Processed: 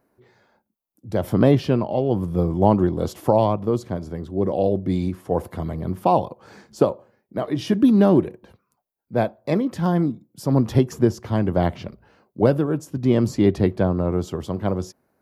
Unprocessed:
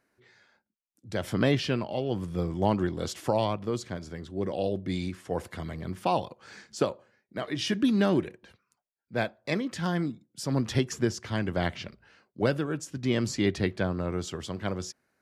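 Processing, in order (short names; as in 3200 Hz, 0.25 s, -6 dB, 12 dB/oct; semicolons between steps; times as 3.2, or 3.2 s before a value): band shelf 3600 Hz -12 dB 3 oct; gain +9 dB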